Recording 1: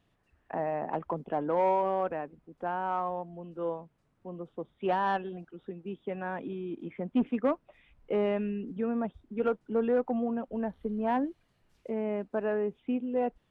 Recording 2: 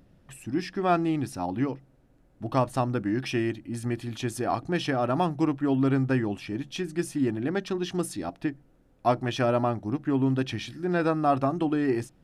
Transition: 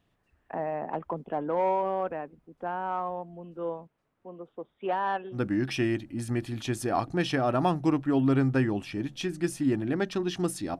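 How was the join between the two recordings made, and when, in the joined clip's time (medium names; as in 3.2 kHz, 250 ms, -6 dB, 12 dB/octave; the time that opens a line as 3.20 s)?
recording 1
3.87–5.41 s: tone controls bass -9 dB, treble -6 dB
5.36 s: go over to recording 2 from 2.91 s, crossfade 0.10 s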